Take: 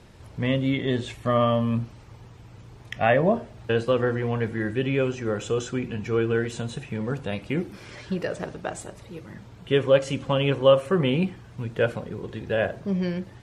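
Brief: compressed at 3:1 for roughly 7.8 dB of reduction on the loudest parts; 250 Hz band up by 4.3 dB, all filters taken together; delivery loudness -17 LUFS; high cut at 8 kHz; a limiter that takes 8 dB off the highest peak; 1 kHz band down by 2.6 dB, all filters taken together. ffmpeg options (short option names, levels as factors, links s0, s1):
-af "lowpass=8000,equalizer=f=250:t=o:g=5.5,equalizer=f=1000:t=o:g=-4,acompressor=threshold=0.0794:ratio=3,volume=5.01,alimiter=limit=0.501:level=0:latency=1"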